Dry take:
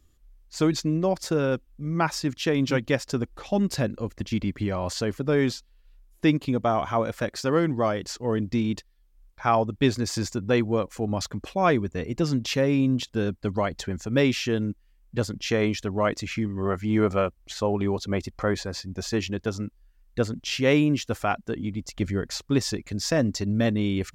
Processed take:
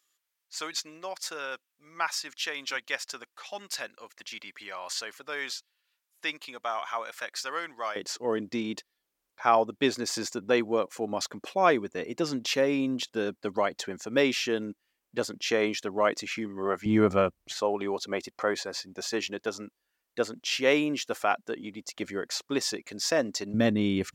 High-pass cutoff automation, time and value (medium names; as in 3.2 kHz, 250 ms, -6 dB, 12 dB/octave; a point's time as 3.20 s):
1.2 kHz
from 7.96 s 340 Hz
from 16.86 s 120 Hz
from 17.53 s 400 Hz
from 23.54 s 150 Hz